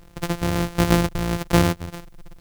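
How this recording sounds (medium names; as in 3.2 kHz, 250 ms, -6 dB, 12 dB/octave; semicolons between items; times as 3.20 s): a buzz of ramps at a fixed pitch in blocks of 256 samples; tremolo triangle 1.4 Hz, depth 50%; a quantiser's noise floor 12-bit, dither triangular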